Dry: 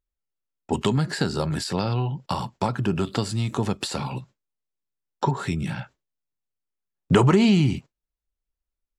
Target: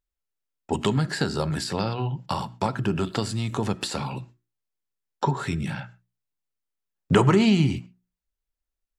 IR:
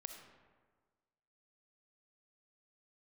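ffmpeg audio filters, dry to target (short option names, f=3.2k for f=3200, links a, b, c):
-filter_complex "[0:a]bandreject=f=60:t=h:w=6,bandreject=f=120:t=h:w=6,bandreject=f=180:t=h:w=6,bandreject=f=240:t=h:w=6,bandreject=f=300:t=h:w=6,bandreject=f=360:t=h:w=6,asplit=2[a][b];[b]equalizer=f=1.7k:w=1.5:g=7[c];[1:a]atrim=start_sample=2205,atrim=end_sample=6174[d];[c][d]afir=irnorm=-1:irlink=0,volume=-10dB[e];[a][e]amix=inputs=2:normalize=0,volume=-2dB"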